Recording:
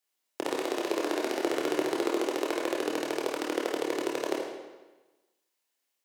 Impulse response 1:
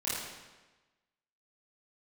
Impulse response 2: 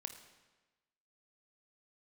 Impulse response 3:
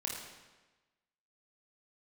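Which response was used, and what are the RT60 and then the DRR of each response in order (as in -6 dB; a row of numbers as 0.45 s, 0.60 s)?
3; 1.2 s, 1.2 s, 1.2 s; -10.5 dB, 6.5 dB, -2.5 dB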